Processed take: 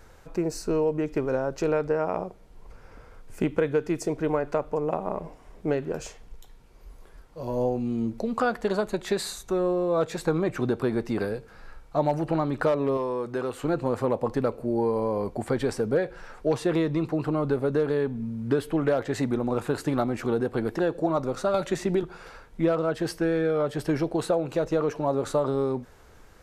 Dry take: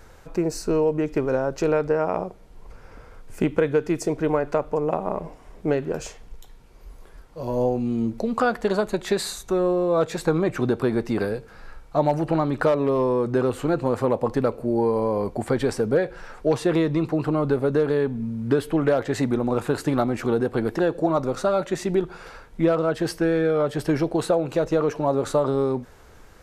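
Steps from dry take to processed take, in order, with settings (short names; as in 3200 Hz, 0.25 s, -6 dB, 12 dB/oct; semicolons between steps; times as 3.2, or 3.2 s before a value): 12.97–13.64 low shelf 370 Hz -9.5 dB; 21.54–22.03 three-band squash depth 100%; gain -3.5 dB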